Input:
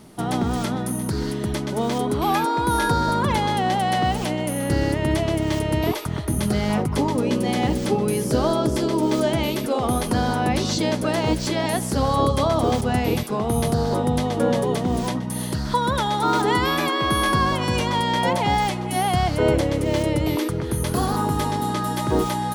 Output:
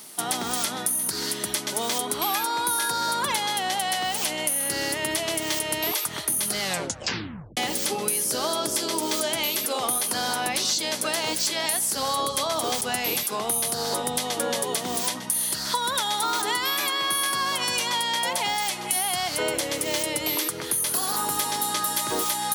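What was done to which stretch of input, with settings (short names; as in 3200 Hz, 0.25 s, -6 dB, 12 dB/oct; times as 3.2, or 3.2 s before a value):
6.6 tape stop 0.97 s
whole clip: HPF 130 Hz 6 dB/oct; tilt +4.5 dB/oct; compressor, threshold -22 dBFS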